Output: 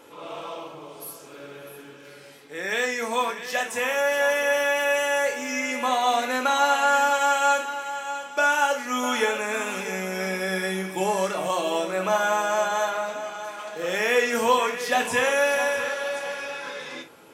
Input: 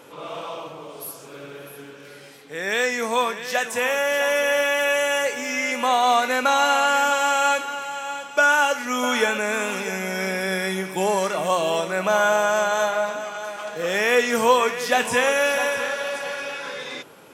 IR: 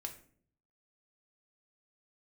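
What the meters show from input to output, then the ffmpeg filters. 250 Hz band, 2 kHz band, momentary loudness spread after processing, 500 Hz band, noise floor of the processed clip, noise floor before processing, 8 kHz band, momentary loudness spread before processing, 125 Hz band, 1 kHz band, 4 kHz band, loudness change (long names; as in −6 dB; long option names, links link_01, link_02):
−2.5 dB, −3.0 dB, 16 LU, −2.5 dB, −46 dBFS, −43 dBFS, −2.5 dB, 16 LU, can't be measured, −2.0 dB, −3.5 dB, −2.5 dB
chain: -filter_complex "[1:a]atrim=start_sample=2205,atrim=end_sample=3528[link_01];[0:a][link_01]afir=irnorm=-1:irlink=0"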